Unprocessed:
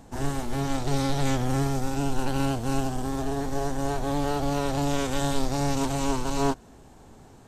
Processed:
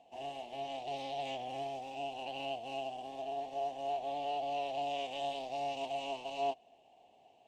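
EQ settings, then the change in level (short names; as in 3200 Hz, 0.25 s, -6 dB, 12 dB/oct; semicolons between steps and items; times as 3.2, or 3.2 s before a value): double band-pass 1400 Hz, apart 2 oct; 0.0 dB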